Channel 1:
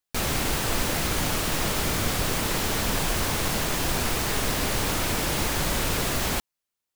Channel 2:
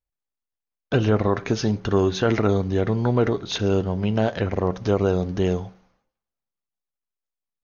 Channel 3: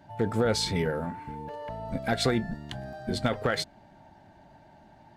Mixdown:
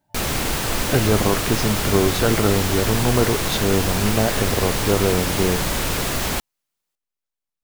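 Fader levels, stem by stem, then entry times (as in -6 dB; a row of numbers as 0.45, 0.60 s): +3.0, +1.0, -17.5 dB; 0.00, 0.00, 0.00 s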